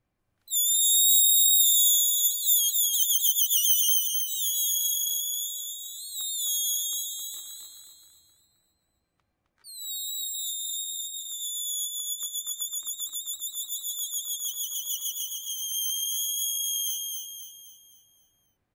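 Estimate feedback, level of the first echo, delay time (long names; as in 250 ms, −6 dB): 44%, −4.0 dB, 263 ms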